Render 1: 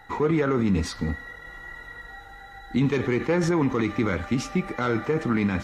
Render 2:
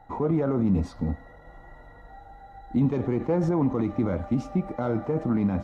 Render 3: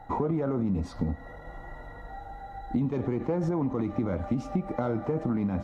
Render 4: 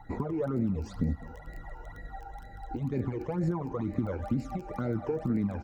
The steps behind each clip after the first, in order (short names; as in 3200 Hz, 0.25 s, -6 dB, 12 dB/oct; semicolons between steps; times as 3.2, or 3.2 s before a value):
EQ curve 280 Hz 0 dB, 430 Hz -5 dB, 630 Hz +5 dB, 1800 Hz -16 dB
compressor, threshold -30 dBFS, peak gain reduction 11.5 dB; gain +5 dB
crackle 14/s -37 dBFS; phaser stages 12, 2.1 Hz, lowest notch 190–1100 Hz; echo 0.206 s -19.5 dB